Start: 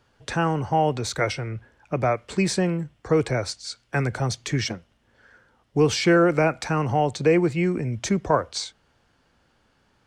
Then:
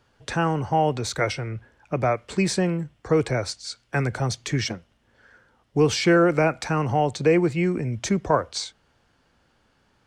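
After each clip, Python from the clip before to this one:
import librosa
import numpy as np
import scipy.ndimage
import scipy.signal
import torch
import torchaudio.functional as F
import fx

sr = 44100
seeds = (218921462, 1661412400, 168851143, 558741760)

y = x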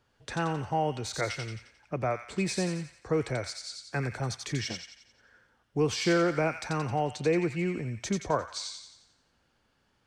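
y = fx.echo_wet_highpass(x, sr, ms=88, feedback_pct=50, hz=1900.0, wet_db=-3)
y = y * librosa.db_to_amplitude(-7.5)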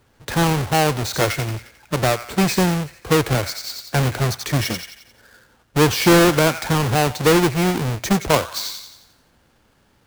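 y = fx.halfwave_hold(x, sr)
y = y * librosa.db_to_amplitude(7.5)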